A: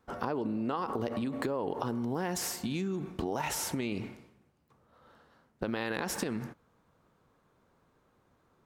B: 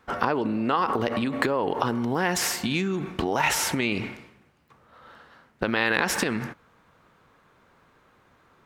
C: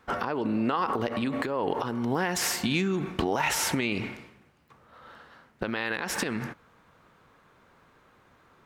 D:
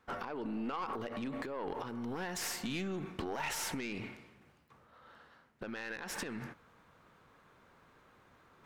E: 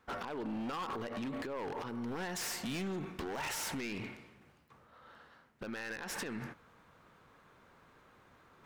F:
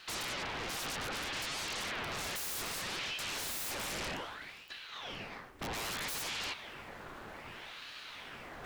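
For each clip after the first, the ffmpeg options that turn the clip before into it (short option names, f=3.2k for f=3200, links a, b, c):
-af "equalizer=f=2.1k:t=o:w=2.2:g=9,volume=6dB"
-af "alimiter=limit=-15dB:level=0:latency=1:release=334"
-af "aeval=exprs='(tanh(11.2*val(0)+0.3)-tanh(0.3))/11.2':c=same,areverse,acompressor=mode=upward:threshold=-47dB:ratio=2.5,areverse,volume=-8.5dB"
-af "aeval=exprs='0.0188*(abs(mod(val(0)/0.0188+3,4)-2)-1)':c=same,volume=1dB"
-af "aeval=exprs='0.0211*sin(PI/2*4.47*val(0)/0.0211)':c=same,aeval=exprs='val(0)*sin(2*PI*1500*n/s+1500*0.9/0.63*sin(2*PI*0.63*n/s))':c=same,volume=1dB"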